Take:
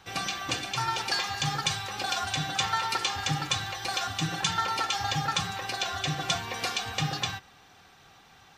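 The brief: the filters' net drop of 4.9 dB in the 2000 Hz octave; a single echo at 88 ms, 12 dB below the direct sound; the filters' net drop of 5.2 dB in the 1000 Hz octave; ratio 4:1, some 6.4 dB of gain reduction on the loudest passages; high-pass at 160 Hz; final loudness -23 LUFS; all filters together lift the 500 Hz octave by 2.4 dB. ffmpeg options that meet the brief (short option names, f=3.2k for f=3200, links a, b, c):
-af "highpass=160,equalizer=f=500:t=o:g=6,equalizer=f=1k:t=o:g=-8.5,equalizer=f=2k:t=o:g=-4,acompressor=threshold=-33dB:ratio=4,aecho=1:1:88:0.251,volume=12.5dB"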